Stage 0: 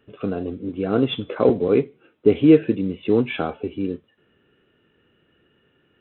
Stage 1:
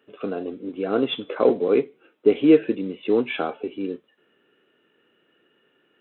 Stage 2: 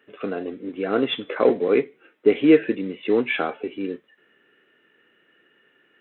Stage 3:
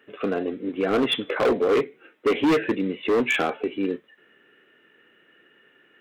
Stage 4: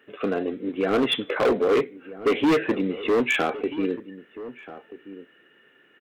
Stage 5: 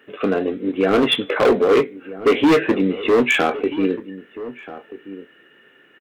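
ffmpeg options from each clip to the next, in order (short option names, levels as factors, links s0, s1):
-af "highpass=290"
-af "equalizer=f=1900:t=o:w=0.63:g=10"
-af "volume=9.44,asoftclip=hard,volume=0.106,volume=1.41"
-filter_complex "[0:a]asplit=2[s0][s1];[s1]adelay=1283,volume=0.178,highshelf=f=4000:g=-28.9[s2];[s0][s2]amix=inputs=2:normalize=0"
-filter_complex "[0:a]asplit=2[s0][s1];[s1]adelay=21,volume=0.251[s2];[s0][s2]amix=inputs=2:normalize=0,volume=1.88"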